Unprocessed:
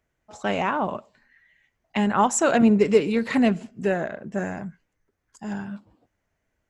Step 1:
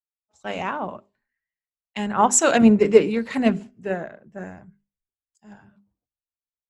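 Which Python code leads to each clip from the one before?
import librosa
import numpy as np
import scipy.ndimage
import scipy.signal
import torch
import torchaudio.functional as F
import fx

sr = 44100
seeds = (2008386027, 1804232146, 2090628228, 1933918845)

y = fx.hum_notches(x, sr, base_hz=50, count=8)
y = fx.band_widen(y, sr, depth_pct=100)
y = y * librosa.db_to_amplitude(-1.5)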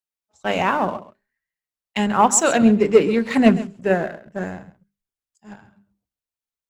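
y = fx.rider(x, sr, range_db=4, speed_s=0.5)
y = fx.leveller(y, sr, passes=1)
y = y + 10.0 ** (-16.0 / 20.0) * np.pad(y, (int(135 * sr / 1000.0), 0))[:len(y)]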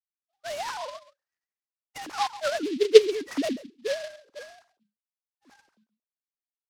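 y = fx.sine_speech(x, sr)
y = fx.noise_mod_delay(y, sr, seeds[0], noise_hz=3300.0, depth_ms=0.064)
y = y * librosa.db_to_amplitude(-7.5)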